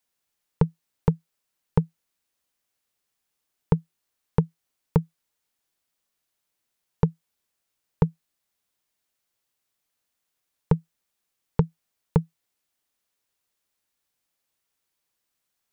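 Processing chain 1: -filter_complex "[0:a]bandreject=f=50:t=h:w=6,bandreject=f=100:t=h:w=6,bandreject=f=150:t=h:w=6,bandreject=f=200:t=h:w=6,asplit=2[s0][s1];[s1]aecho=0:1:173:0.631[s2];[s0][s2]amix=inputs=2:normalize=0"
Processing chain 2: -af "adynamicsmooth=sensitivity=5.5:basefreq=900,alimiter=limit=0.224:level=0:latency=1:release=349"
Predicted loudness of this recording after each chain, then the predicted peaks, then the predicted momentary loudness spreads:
-29.0 LUFS, -34.5 LUFS; -6.5 dBFS, -13.0 dBFS; 5 LU, 4 LU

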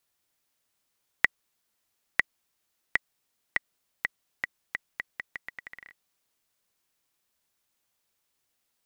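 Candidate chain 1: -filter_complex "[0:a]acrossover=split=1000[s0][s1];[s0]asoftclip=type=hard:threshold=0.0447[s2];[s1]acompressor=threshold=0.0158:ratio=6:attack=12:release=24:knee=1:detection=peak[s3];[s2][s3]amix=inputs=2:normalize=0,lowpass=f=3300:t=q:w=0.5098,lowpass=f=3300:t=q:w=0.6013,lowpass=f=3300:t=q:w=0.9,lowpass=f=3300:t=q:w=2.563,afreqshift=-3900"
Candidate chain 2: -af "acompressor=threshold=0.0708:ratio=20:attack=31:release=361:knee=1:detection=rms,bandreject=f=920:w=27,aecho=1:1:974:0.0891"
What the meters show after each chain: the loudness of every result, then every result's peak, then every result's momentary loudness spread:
-40.0 LUFS, -36.0 LUFS; -9.5 dBFS, -4.0 dBFS; 8 LU, 17 LU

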